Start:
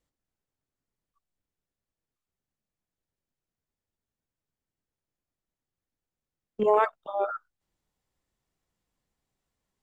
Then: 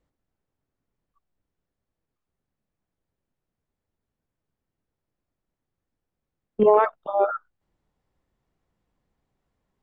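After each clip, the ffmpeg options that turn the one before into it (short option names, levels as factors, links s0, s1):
-af "alimiter=limit=0.211:level=0:latency=1:release=19,lowpass=f=1300:p=1,volume=2.51"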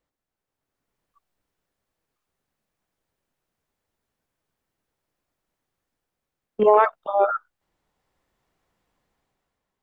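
-af "dynaudnorm=f=150:g=9:m=2.66,lowshelf=f=390:g=-11"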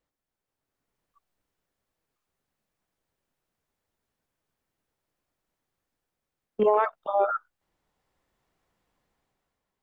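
-af "acompressor=threshold=0.141:ratio=2.5,volume=0.794"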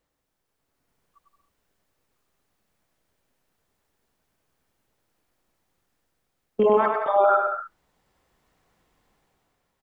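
-filter_complex "[0:a]alimiter=limit=0.126:level=0:latency=1:release=12,asplit=2[s0][s1];[s1]aecho=0:1:100|175|231.2|273.4|305.1:0.631|0.398|0.251|0.158|0.1[s2];[s0][s2]amix=inputs=2:normalize=0,volume=2"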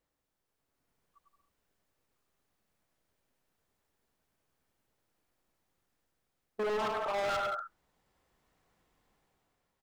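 -af "volume=16.8,asoftclip=hard,volume=0.0596,volume=0.501"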